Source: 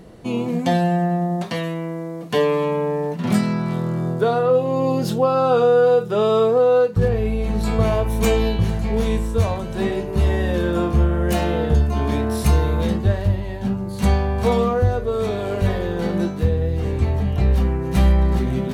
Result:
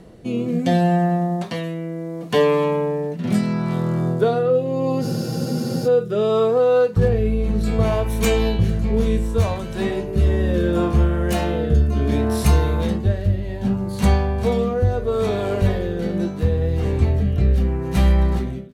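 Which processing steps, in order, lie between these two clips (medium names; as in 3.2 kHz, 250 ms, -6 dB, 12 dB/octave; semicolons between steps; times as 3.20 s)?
fade out at the end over 0.53 s; rotary cabinet horn 0.7 Hz; spectral freeze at 5.03 s, 0.83 s; trim +2 dB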